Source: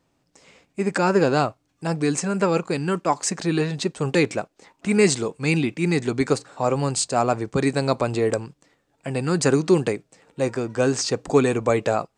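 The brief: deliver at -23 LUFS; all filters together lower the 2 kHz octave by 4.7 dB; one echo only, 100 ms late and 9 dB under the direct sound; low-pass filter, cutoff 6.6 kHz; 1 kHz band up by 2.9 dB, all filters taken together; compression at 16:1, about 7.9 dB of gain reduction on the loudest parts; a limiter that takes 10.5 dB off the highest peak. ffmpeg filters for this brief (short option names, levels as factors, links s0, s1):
-af "lowpass=6600,equalizer=f=1000:t=o:g=6,equalizer=f=2000:t=o:g=-8.5,acompressor=threshold=0.112:ratio=16,alimiter=limit=0.106:level=0:latency=1,aecho=1:1:100:0.355,volume=2.11"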